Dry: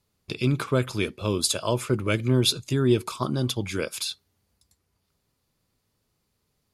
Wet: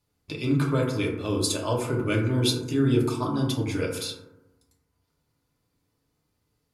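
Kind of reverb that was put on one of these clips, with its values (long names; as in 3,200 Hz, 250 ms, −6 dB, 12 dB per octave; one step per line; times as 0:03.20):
feedback delay network reverb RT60 1 s, low-frequency decay 1.2×, high-frequency decay 0.3×, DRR −2 dB
level −5 dB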